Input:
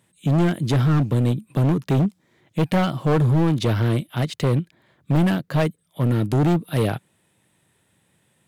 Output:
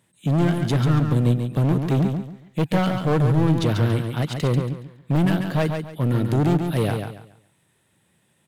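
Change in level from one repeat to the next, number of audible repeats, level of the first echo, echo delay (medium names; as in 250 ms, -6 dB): -11.0 dB, 3, -6.0 dB, 140 ms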